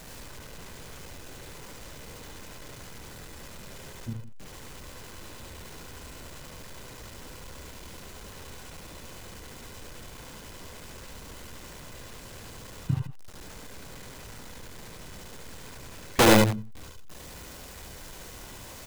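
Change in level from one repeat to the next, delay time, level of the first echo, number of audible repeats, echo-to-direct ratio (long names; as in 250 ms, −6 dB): repeats not evenly spaced, 72 ms, −2.5 dB, 2, −2.0 dB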